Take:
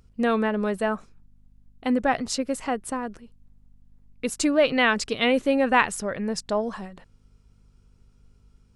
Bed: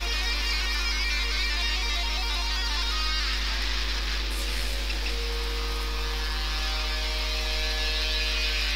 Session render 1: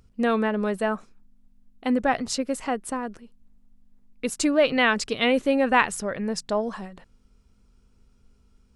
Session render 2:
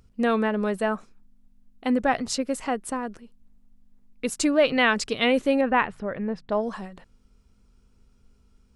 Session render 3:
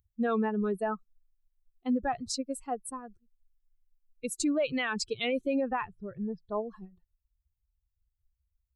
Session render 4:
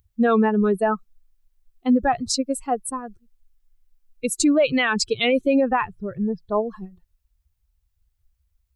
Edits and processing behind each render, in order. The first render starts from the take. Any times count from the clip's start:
de-hum 50 Hz, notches 3
5.61–6.52 air absorption 410 m
per-bin expansion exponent 2; limiter -21.5 dBFS, peak gain reduction 10.5 dB
gain +10.5 dB

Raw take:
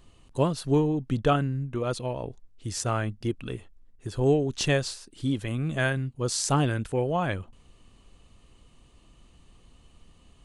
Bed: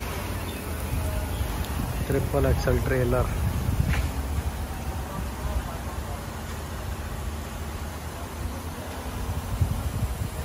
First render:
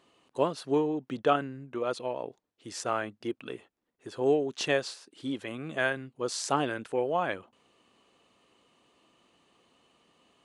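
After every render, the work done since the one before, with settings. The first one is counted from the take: HPF 340 Hz 12 dB/oct; high shelf 5800 Hz -11.5 dB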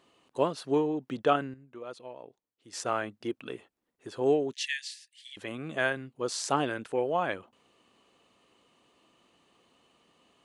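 1.54–2.73 gain -10.5 dB; 4.53–5.37 Chebyshev high-pass 1700 Hz, order 8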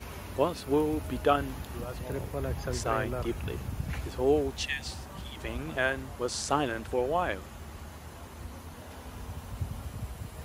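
add bed -10.5 dB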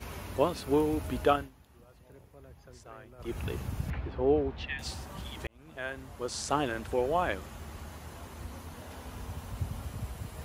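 1.29–3.39 dip -19.5 dB, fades 0.21 s; 3.9–4.79 air absorption 360 m; 5.47–7.21 fade in equal-power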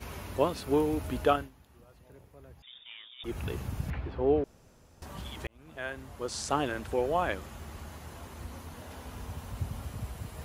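2.62–3.24 inverted band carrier 3600 Hz; 4.44–5.02 room tone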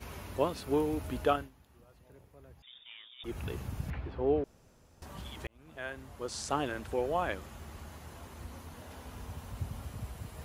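gain -3 dB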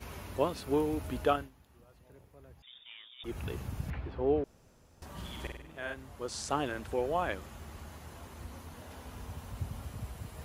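5.1–5.94 flutter echo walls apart 8.5 m, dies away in 0.7 s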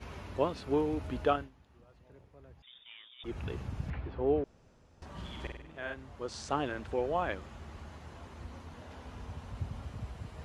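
air absorption 85 m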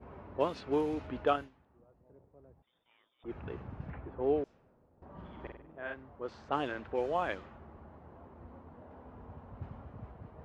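low shelf 120 Hz -11 dB; low-pass opened by the level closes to 670 Hz, open at -27.5 dBFS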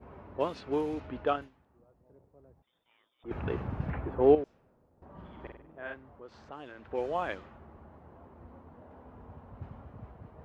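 1–1.42 air absorption 70 m; 3.31–4.35 gain +9 dB; 5.97–6.91 compressor 2:1, threshold -50 dBFS

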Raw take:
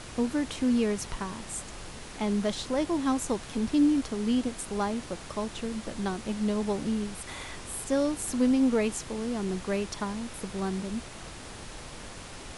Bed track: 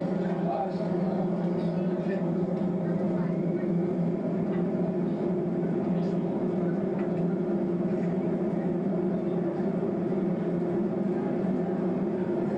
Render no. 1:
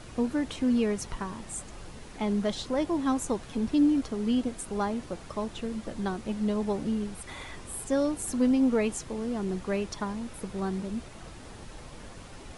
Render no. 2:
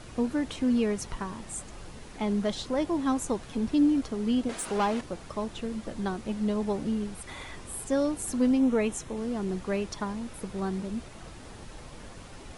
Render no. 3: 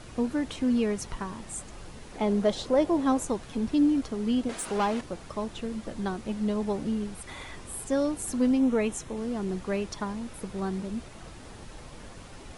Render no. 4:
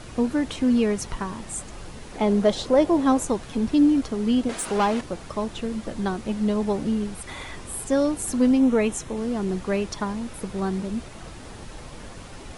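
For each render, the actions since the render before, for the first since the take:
denoiser 7 dB, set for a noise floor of -43 dBFS
4.49–5.01 overdrive pedal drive 17 dB, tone 4700 Hz, clips at -18.5 dBFS; 8.57–9.17 notch 4700 Hz, Q 5.3
2.12–3.25 bell 540 Hz +7 dB 1.3 oct
gain +5 dB

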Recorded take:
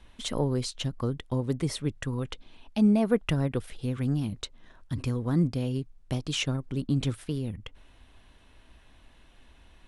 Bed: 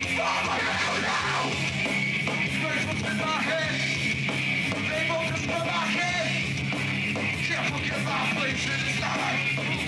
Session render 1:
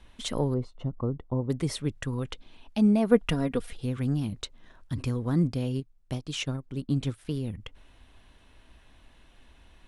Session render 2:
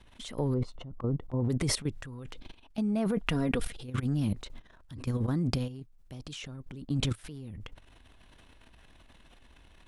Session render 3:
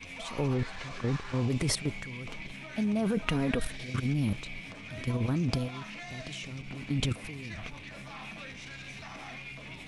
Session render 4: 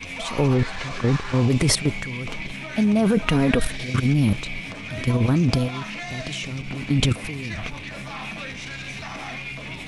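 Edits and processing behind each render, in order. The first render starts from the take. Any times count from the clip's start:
0.54–1.5 polynomial smoothing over 65 samples; 3.11–3.73 comb 4.2 ms; 5.8–7.25 upward expander, over -40 dBFS
transient shaper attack -2 dB, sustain +12 dB; level quantiser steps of 14 dB
add bed -17 dB
gain +10 dB; limiter -1 dBFS, peak gain reduction 2.5 dB

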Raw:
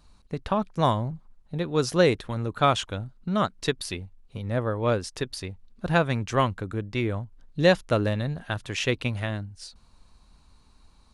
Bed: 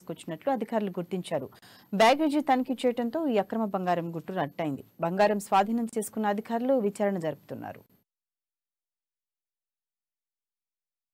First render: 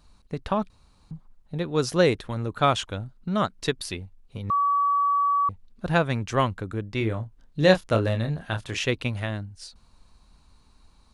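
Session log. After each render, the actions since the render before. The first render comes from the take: 0.7–1.11 room tone; 4.5–5.49 bleep 1140 Hz -19 dBFS; 6.98–8.78 doubler 27 ms -7 dB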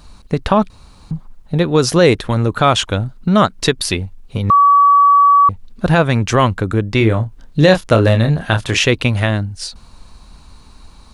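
in parallel at -3 dB: compressor, threshold -30 dBFS, peak gain reduction 17 dB; on the sum: maximiser +11 dB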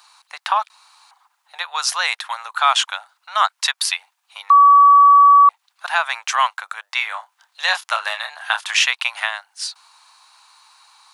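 steep high-pass 800 Hz 48 dB/oct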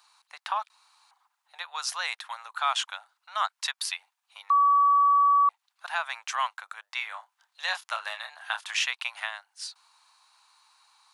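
gain -11 dB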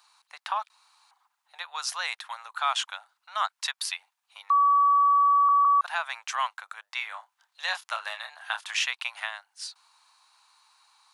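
5.33 stutter in place 0.16 s, 3 plays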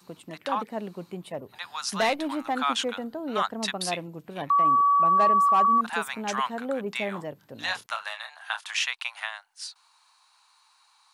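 add bed -5 dB

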